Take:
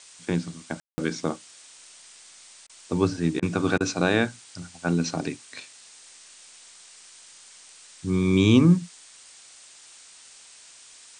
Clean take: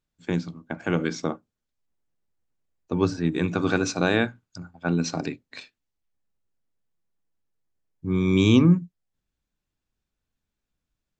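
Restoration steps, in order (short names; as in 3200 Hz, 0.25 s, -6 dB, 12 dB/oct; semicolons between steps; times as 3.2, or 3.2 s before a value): room tone fill 0.8–0.98; interpolate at 2.67/3.4/3.78, 23 ms; noise print and reduce 30 dB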